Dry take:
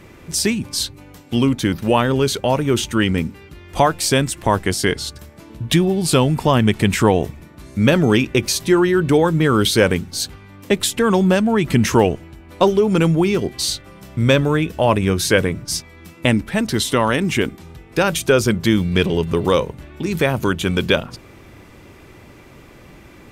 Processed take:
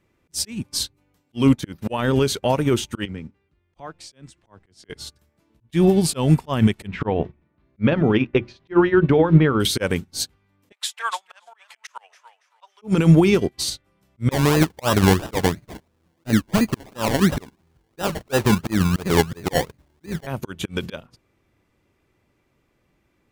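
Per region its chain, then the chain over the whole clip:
0:03.05–0:04.90: downward compressor 5 to 1, threshold −21 dBFS + high-frequency loss of the air 78 metres + multiband upward and downward expander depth 40%
0:06.87–0:09.60: Bessel low-pass filter 2,400 Hz, order 4 + mains-hum notches 60/120/180/240/300/360 Hz
0:10.72–0:12.82: inverse Chebyshev high-pass filter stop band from 320 Hz, stop band 50 dB + high-shelf EQ 9,500 Hz −12 dB + feedback echo with a swinging delay time 284 ms, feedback 45%, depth 61 cents, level −11 dB
0:14.31–0:20.27: Butterworth low-pass 5,100 Hz + sample-and-hold swept by an LFO 28×, swing 60% 2.9 Hz
whole clip: volume swells 152 ms; boost into a limiter +10.5 dB; expander for the loud parts 2.5 to 1, over −26 dBFS; level −2.5 dB

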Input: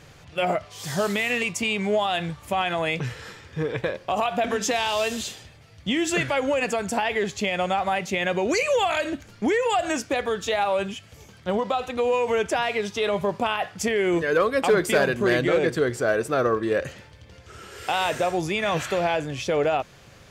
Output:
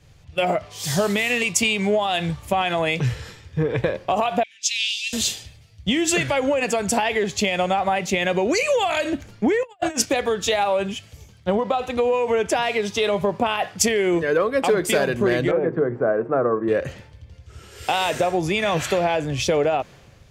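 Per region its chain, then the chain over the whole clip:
0:04.43–0:05.13: elliptic high-pass filter 2,300 Hz, stop band 50 dB + high-frequency loss of the air 72 metres + multiband upward and downward expander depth 70%
0:09.63–0:10.07: compressor whose output falls as the input rises −30 dBFS, ratio −0.5 + downward expander −31 dBFS
0:15.51–0:16.68: Chebyshev band-pass filter 140–1,200 Hz + mains-hum notches 50/100/150/200/250/300/350/400 Hz
whole clip: parametric band 1,400 Hz −3.5 dB 0.86 octaves; downward compressor 5 to 1, threshold −26 dBFS; multiband upward and downward expander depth 70%; level +8.5 dB

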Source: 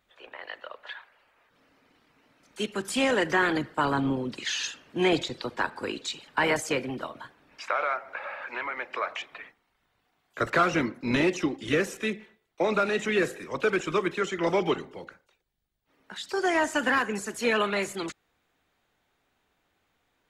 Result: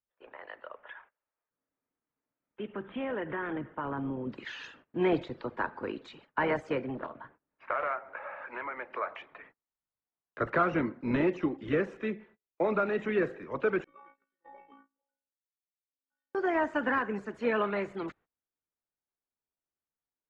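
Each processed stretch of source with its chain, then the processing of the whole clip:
0:00.69–0:04.27: Butterworth low-pass 3,600 Hz 96 dB per octave + downward compressor 2 to 1, threshold −32 dBFS
0:06.95–0:08.36: low-pass that shuts in the quiet parts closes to 1,800 Hz, open at −23.5 dBFS + highs frequency-modulated by the lows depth 0.63 ms
0:13.84–0:16.35: bass and treble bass −5 dB, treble −14 dB + stiff-string resonator 270 Hz, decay 0.84 s, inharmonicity 0.008 + amplitude modulation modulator 58 Hz, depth 35%
whole clip: low-pass filter 1,600 Hz 12 dB per octave; notch filter 750 Hz, Q 21; noise gate −54 dBFS, range −24 dB; level −2.5 dB

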